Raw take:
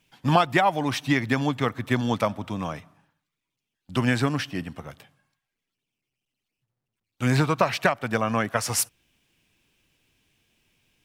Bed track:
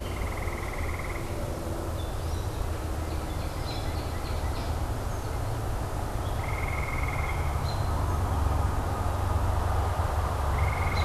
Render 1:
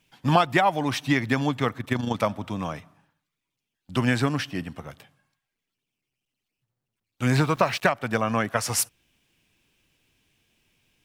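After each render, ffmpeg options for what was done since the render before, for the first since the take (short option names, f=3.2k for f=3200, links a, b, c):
-filter_complex "[0:a]asplit=3[a][b][c];[a]afade=t=out:st=1.77:d=0.02[d];[b]tremolo=f=26:d=0.571,afade=t=in:st=1.77:d=0.02,afade=t=out:st=2.17:d=0.02[e];[c]afade=t=in:st=2.17:d=0.02[f];[d][e][f]amix=inputs=3:normalize=0,asettb=1/sr,asplit=3[g][h][i];[g]atrim=end=7.324[j];[h]atrim=start=7.32:end=7.89,asetpts=PTS-STARTPTS,afade=t=in:d=0.004:c=qsin,afade=t=out:st=0.566:d=0.004:c=qsin,aeval=exprs='val(0)*gte(abs(val(0)),0.00631)':c=same[k];[i]atrim=start=7.886[l];[j][k]acrossfade=d=0.004:c1=hsin:c2=qsin[m];[m][l]acrossfade=d=0.004:c1=qsin:c2=hsin"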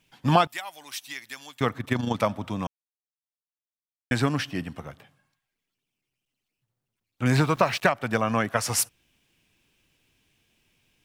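-filter_complex "[0:a]asettb=1/sr,asplit=3[a][b][c];[a]atrim=end=0.474[d];[b]atrim=start=0.47:end=1.61,asetpts=PTS-STARTPTS,afade=t=in:d=0.004:c=qsin,afade=t=out:st=1.136:d=0.004:c=qsin,aderivative[e];[c]atrim=start=1.606[f];[d][e]acrossfade=d=0.004:c1=hsin:c2=qsin[g];[g][f]acrossfade=d=0.004:c1=qsin:c2=hsin,asettb=1/sr,asplit=3[h][i][j];[h]atrim=end=4.884[k];[i]atrim=start=4.88:end=7.26,asetpts=PTS-STARTPTS,afade=t=in:d=0.004:c=qsin,afade=t=out:st=2.376:d=0.004:c=qsin,acrossover=split=2600[l][m];[m]acompressor=threshold=-56dB:ratio=4:attack=1:release=60[n];[l][n]amix=inputs=2:normalize=0[o];[j]atrim=start=7.256[p];[k][o]acrossfade=d=0.004:c1=hsin:c2=qsin[q];[q][p]acrossfade=d=0.004:c1=qsin:c2=hsin,asplit=3[r][s][t];[r]atrim=end=2.67,asetpts=PTS-STARTPTS,afade=t=out:st=2.666:d=0.004:c=hsin[u];[s]atrim=start=2.67:end=4.11,asetpts=PTS-STARTPTS,volume=0[v];[t]atrim=start=4.11,asetpts=PTS-STARTPTS,afade=t=in:d=0.004:c=hsin[w];[u][v][w]concat=n=3:v=0:a=1"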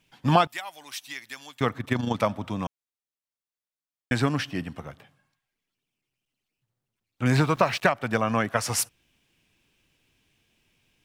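-af "highshelf=f=8.2k:g=-3.5"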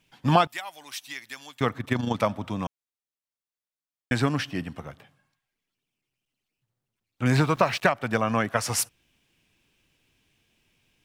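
-af anull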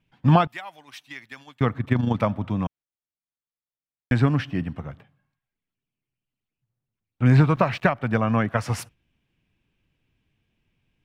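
-af "bass=f=250:g=8,treble=f=4k:g=-13,agate=range=-6dB:threshold=-45dB:ratio=16:detection=peak"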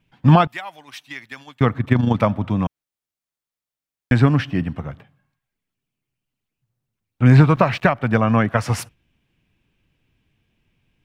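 -af "volume=5dB,alimiter=limit=-1dB:level=0:latency=1"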